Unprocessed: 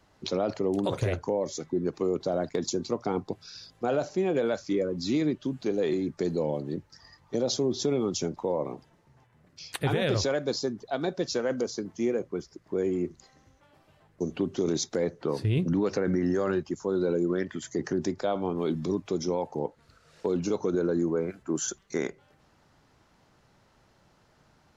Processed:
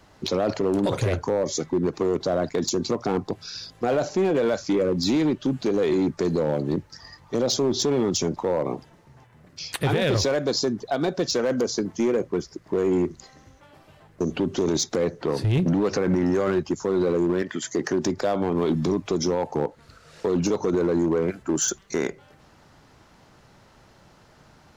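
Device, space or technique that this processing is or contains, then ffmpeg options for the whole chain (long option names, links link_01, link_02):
limiter into clipper: -filter_complex "[0:a]asettb=1/sr,asplit=3[link_01][link_02][link_03];[link_01]atrim=end=17.424[link_04];[link_02]atrim=start=17.42:end=18.05,asetpts=PTS-STARTPTS,afade=type=in:duration=0.004:curve=qsin,afade=type=out:start_time=0.626:duration=0.004:curve=qsin,highpass=frequency=300:poles=1[link_05];[link_03]atrim=start=18.046[link_06];[link_04][link_05]acrossfade=duration=0.004:curve1=hsin:curve2=qsin[link_07];[link_07][link_06]acrossfade=duration=0.004:curve1=qsin:curve2=hsin,alimiter=limit=-22dB:level=0:latency=1:release=83,asoftclip=type=hard:threshold=-25.5dB,volume=9dB"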